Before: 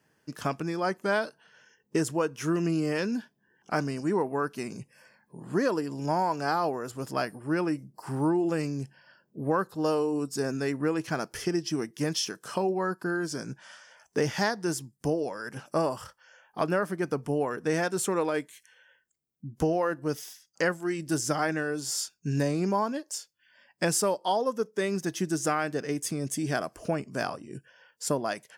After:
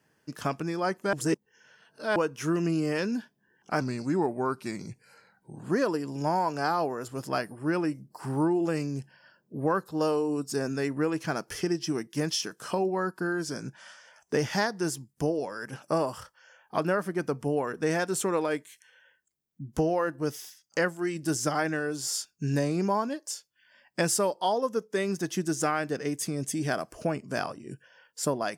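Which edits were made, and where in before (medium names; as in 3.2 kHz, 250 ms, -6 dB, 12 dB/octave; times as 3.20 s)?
1.13–2.16 s: reverse
3.81–5.47 s: speed 91%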